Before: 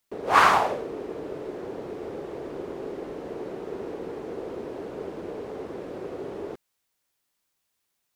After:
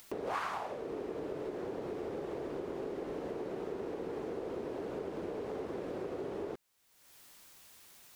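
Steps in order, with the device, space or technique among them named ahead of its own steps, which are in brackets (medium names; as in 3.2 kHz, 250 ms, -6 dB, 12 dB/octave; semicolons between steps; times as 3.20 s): upward and downward compression (upward compressor, threshold -42 dBFS; compression 6:1, threshold -37 dBFS, peak gain reduction 22.5 dB); trim +1 dB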